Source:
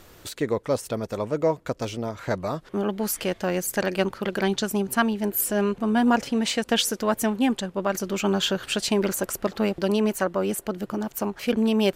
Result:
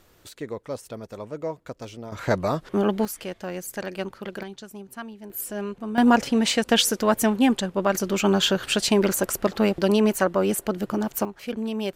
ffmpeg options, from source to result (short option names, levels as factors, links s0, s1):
-af "asetnsamples=n=441:p=0,asendcmd='2.12 volume volume 4dB;3.05 volume volume -7dB;4.43 volume volume -15dB;5.3 volume volume -7.5dB;5.98 volume volume 3dB;11.25 volume volume -7dB',volume=0.398"